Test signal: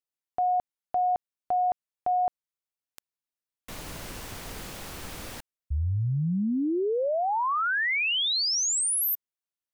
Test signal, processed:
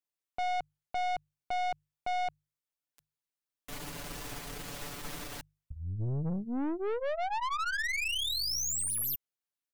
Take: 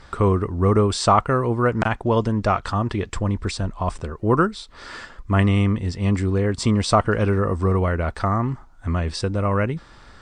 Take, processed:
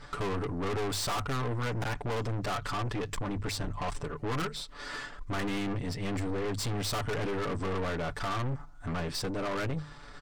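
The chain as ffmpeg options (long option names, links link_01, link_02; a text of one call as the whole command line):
ffmpeg -i in.wav -af "bandreject=frequency=50:width_type=h:width=6,bandreject=frequency=100:width_type=h:width=6,bandreject=frequency=150:width_type=h:width=6,aecho=1:1:6.9:0.87,aeval=exprs='(tanh(25.1*val(0)+0.45)-tanh(0.45))/25.1':channel_layout=same,volume=-2.5dB" out.wav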